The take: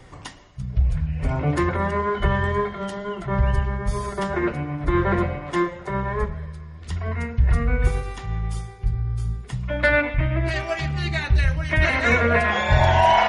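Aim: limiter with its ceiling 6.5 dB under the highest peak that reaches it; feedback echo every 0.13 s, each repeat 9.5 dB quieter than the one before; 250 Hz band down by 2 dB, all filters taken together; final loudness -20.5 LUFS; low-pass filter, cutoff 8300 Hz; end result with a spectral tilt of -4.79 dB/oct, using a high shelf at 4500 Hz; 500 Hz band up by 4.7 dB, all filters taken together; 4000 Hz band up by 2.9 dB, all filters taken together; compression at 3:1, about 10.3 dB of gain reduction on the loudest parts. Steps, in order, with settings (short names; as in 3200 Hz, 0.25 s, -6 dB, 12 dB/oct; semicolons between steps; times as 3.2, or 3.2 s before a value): LPF 8300 Hz; bell 250 Hz -8 dB; bell 500 Hz +8.5 dB; bell 4000 Hz +6 dB; high shelf 4500 Hz -4.5 dB; compressor 3:1, threshold -25 dBFS; limiter -18 dBFS; feedback echo 0.13 s, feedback 33%, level -9.5 dB; gain +8 dB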